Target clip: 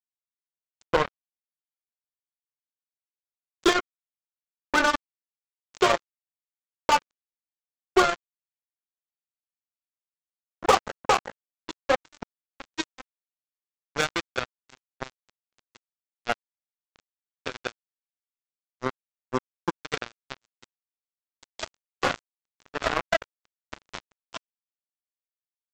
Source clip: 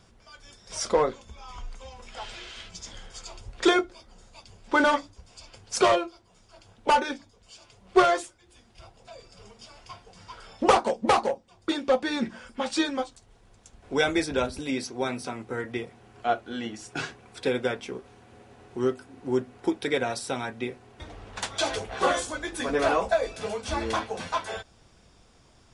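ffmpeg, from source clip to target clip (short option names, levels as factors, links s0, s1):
-af "aresample=16000,acrusher=bits=2:mix=0:aa=0.5,aresample=44100,adynamicequalizer=threshold=0.0112:dfrequency=1300:dqfactor=2:tfrequency=1300:tqfactor=2:attack=5:release=100:ratio=0.375:range=2:mode=boostabove:tftype=bell,asoftclip=type=hard:threshold=0.266"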